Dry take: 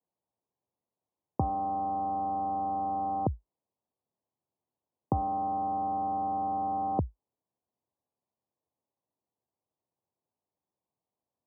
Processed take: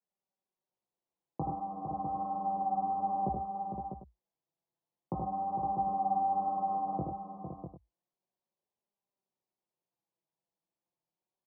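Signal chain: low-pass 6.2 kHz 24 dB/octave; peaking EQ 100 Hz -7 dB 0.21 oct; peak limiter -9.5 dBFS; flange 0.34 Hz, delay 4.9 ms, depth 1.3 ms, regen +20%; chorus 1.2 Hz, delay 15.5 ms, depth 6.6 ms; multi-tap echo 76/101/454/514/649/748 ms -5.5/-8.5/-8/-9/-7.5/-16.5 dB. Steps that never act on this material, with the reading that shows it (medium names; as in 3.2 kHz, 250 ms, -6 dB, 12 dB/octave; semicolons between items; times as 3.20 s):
low-pass 6.2 kHz: input has nothing above 1.1 kHz; peak limiter -9.5 dBFS: peak at its input -14.0 dBFS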